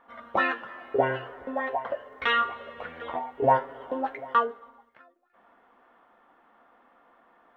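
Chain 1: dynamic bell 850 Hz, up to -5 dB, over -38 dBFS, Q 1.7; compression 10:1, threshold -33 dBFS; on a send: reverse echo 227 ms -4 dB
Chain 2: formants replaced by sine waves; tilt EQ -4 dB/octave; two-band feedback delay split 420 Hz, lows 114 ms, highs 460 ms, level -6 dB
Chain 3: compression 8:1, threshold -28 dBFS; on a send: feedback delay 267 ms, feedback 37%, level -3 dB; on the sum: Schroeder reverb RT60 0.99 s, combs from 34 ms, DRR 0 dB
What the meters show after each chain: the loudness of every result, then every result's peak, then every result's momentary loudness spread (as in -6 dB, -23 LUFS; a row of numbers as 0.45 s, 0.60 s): -37.5 LUFS, -26.5 LUFS, -30.5 LUFS; -16.5 dBFS, -8.0 dBFS, -14.5 dBFS; 11 LU, 14 LU, 8 LU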